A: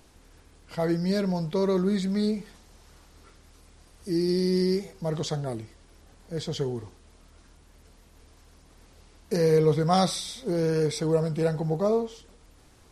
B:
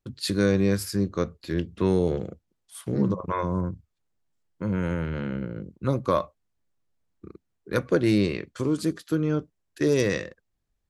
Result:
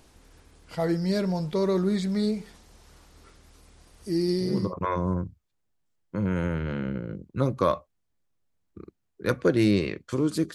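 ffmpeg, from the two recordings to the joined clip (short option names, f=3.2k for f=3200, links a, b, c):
-filter_complex "[0:a]apad=whole_dur=10.54,atrim=end=10.54,atrim=end=4.74,asetpts=PTS-STARTPTS[a];[1:a]atrim=start=2.77:end=9.01,asetpts=PTS-STARTPTS[b];[a][b]acrossfade=d=0.44:c1=tri:c2=tri"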